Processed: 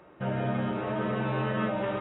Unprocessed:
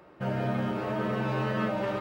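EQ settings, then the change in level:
linear-phase brick-wall low-pass 3,900 Hz
0.0 dB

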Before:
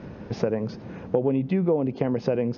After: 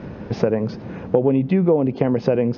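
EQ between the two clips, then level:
high-frequency loss of the air 62 metres
+6.0 dB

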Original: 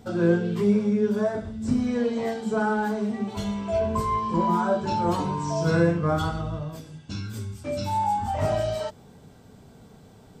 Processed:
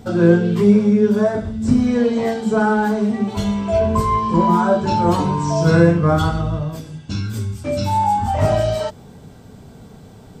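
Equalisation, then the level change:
low-shelf EQ 220 Hz +3.5 dB
+7.0 dB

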